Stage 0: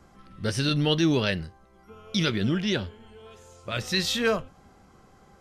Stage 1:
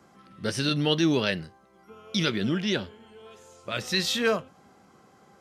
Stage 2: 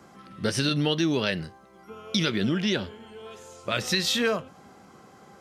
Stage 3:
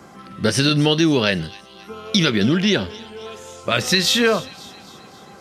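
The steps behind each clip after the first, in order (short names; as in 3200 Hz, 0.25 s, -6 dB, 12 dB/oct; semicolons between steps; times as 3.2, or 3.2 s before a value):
HPF 150 Hz 12 dB/oct
compressor 5:1, threshold -27 dBFS, peak gain reduction 8 dB; gain +5.5 dB
thin delay 0.267 s, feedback 56%, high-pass 2900 Hz, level -16.5 dB; gain +8 dB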